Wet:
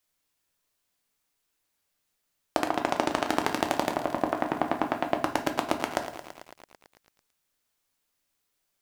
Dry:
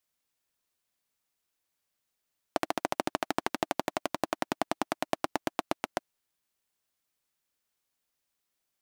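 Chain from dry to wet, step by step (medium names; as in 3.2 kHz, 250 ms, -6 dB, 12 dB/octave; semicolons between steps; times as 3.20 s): 2.65–3.25 s: level-controlled noise filter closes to 1.1 kHz, open at -28 dBFS; 3.92–5.23 s: low-pass 1.4 kHz -> 3 kHz 12 dB/octave; simulated room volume 69 m³, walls mixed, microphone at 0.4 m; bit-crushed delay 111 ms, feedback 80%, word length 8-bit, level -12.5 dB; trim +3.5 dB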